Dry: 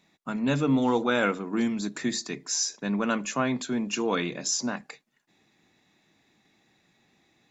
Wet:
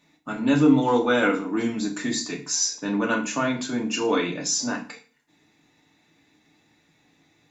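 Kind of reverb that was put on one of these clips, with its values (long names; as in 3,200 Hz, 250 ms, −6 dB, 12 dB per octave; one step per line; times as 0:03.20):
feedback delay network reverb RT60 0.38 s, low-frequency decay 1.2×, high-frequency decay 0.95×, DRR −0.5 dB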